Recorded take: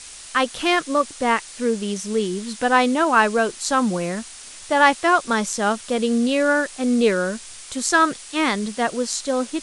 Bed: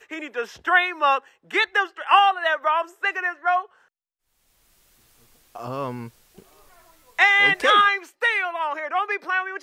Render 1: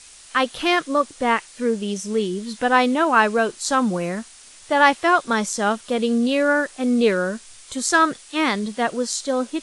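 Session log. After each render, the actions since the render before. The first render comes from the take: noise print and reduce 6 dB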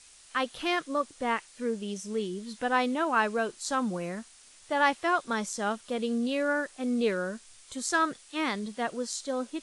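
gain -9.5 dB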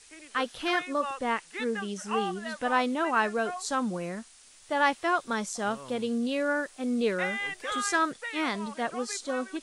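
add bed -16.5 dB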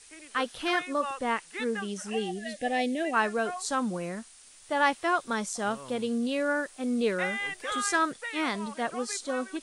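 2.1–3.14 spectral gain 780–1600 Hz -25 dB; bell 9100 Hz +4.5 dB 0.25 oct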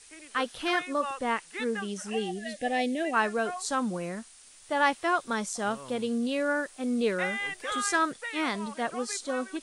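nothing audible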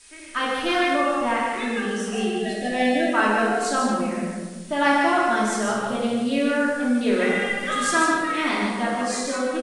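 echo 0.148 s -5 dB; shoebox room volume 900 m³, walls mixed, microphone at 2.8 m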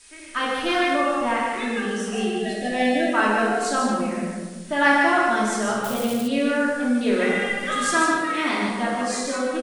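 4.66–5.3 bell 1700 Hz +6 dB 0.42 oct; 5.84–6.28 switching spikes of -23 dBFS; 8.18–8.69 HPF 110 Hz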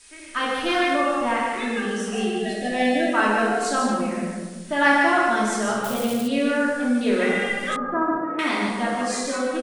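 7.76–8.39 LPF 1200 Hz 24 dB/oct

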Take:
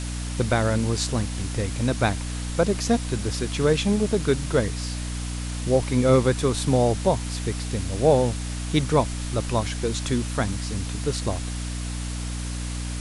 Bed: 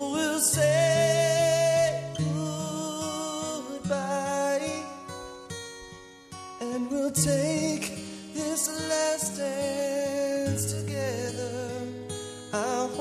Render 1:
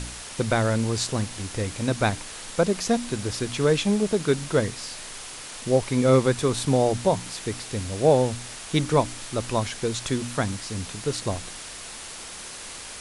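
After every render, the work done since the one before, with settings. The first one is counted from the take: de-hum 60 Hz, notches 5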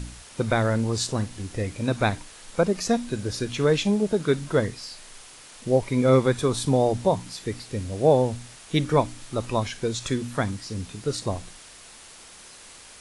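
noise print and reduce 8 dB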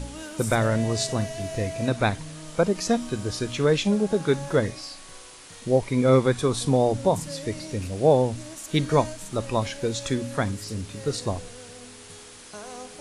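add bed -12 dB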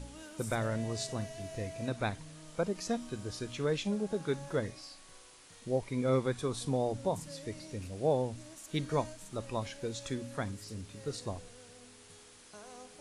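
gain -11 dB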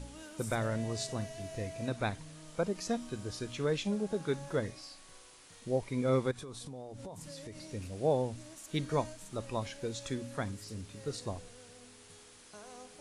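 6.31–7.67 compressor 10:1, threshold -41 dBFS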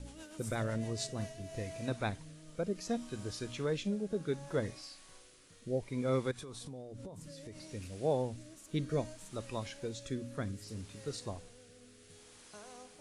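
rotary speaker horn 8 Hz, later 0.65 Hz, at 0.67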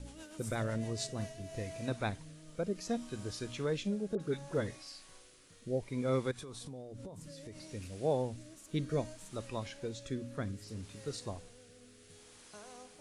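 4.15–5.08 dispersion highs, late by 49 ms, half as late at 1600 Hz; 9.48–10.83 high shelf 6000 Hz -4 dB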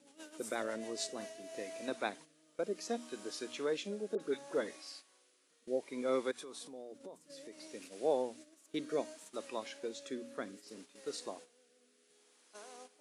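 HPF 270 Hz 24 dB/oct; gate -52 dBFS, range -10 dB

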